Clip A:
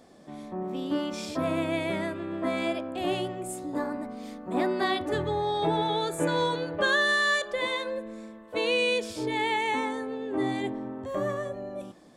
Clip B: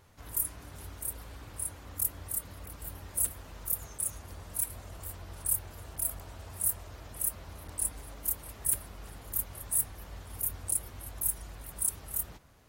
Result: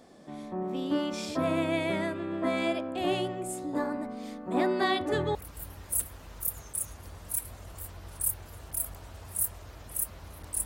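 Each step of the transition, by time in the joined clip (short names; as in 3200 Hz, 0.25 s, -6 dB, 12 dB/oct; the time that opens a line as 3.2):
clip A
5.35 switch to clip B from 2.6 s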